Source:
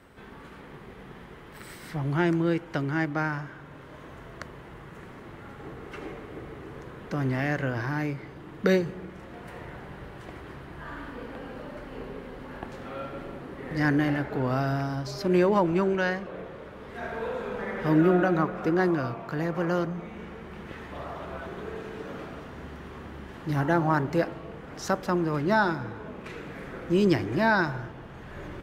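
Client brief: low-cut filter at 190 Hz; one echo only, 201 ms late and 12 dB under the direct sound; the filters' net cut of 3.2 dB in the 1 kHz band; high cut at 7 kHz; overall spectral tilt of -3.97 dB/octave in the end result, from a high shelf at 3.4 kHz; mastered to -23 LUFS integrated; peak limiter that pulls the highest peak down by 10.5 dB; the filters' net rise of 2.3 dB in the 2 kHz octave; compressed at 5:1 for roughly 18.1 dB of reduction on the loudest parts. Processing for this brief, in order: high-pass 190 Hz; low-pass 7 kHz; peaking EQ 1 kHz -6 dB; peaking EQ 2 kHz +4.5 dB; treble shelf 3.4 kHz +5.5 dB; compression 5:1, threshold -40 dBFS; peak limiter -34 dBFS; delay 201 ms -12 dB; trim +21 dB

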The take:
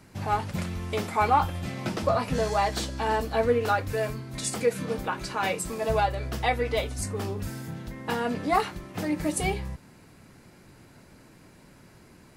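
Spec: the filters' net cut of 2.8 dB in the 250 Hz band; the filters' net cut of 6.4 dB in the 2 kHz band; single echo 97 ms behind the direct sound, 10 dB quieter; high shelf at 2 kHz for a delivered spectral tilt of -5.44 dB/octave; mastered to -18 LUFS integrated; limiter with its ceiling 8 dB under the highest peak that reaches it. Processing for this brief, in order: peaking EQ 250 Hz -3.5 dB; treble shelf 2 kHz -5 dB; peaking EQ 2 kHz -5.5 dB; peak limiter -20 dBFS; delay 97 ms -10 dB; trim +14 dB

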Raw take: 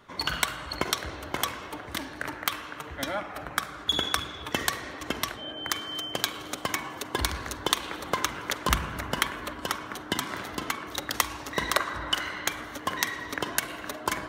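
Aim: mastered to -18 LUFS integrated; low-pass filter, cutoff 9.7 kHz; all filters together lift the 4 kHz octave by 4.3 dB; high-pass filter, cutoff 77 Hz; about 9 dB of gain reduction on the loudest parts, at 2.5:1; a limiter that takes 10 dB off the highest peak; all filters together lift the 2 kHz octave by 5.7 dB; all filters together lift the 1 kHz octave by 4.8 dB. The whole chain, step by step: high-pass 77 Hz; low-pass 9.7 kHz; peaking EQ 1 kHz +4 dB; peaking EQ 2 kHz +5 dB; peaking EQ 4 kHz +3.5 dB; compression 2.5:1, threshold -30 dBFS; trim +16 dB; peak limiter -1.5 dBFS

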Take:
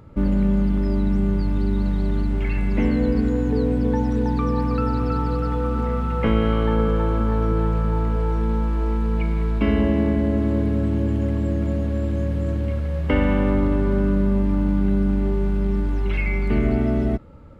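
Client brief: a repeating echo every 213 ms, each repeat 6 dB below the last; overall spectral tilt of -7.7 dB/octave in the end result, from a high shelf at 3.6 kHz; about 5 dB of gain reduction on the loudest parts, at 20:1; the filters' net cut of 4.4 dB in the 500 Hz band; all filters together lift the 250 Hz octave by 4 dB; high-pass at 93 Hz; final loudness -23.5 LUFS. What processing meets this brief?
high-pass 93 Hz; peaking EQ 250 Hz +7 dB; peaking EQ 500 Hz -8 dB; treble shelf 3.6 kHz -6 dB; compression 20:1, threshold -18 dBFS; feedback delay 213 ms, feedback 50%, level -6 dB; trim -1.5 dB

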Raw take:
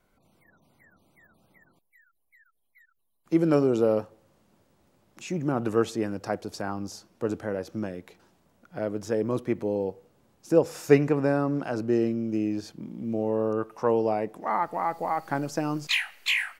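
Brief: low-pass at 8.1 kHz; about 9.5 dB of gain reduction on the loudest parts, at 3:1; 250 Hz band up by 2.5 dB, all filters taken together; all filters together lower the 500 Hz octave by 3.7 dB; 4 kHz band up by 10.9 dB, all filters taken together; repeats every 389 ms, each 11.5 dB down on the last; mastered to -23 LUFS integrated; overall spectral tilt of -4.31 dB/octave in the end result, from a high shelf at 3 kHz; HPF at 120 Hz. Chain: high-pass 120 Hz; low-pass 8.1 kHz; peaking EQ 250 Hz +6 dB; peaking EQ 500 Hz -7 dB; treble shelf 3 kHz +8 dB; peaking EQ 4 kHz +8.5 dB; compression 3:1, threshold -26 dBFS; feedback delay 389 ms, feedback 27%, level -11.5 dB; trim +7.5 dB

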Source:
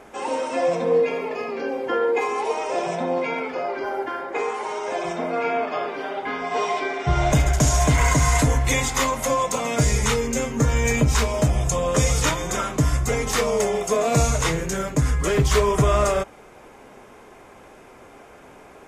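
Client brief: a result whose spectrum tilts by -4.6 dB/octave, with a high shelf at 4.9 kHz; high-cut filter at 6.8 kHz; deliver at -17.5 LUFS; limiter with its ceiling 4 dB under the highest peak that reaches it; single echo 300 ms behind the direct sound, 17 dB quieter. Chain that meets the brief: low-pass 6.8 kHz; treble shelf 4.9 kHz +3 dB; peak limiter -12 dBFS; delay 300 ms -17 dB; trim +5.5 dB

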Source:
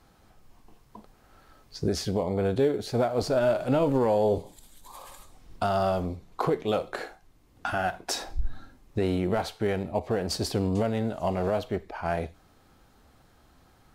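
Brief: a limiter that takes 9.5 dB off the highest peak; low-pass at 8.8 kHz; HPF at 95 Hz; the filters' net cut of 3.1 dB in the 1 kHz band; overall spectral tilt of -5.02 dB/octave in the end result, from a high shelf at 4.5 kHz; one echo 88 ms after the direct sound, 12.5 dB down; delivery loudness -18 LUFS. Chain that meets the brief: high-pass 95 Hz; low-pass 8.8 kHz; peaking EQ 1 kHz -5 dB; treble shelf 4.5 kHz +3 dB; peak limiter -23 dBFS; delay 88 ms -12.5 dB; trim +16 dB

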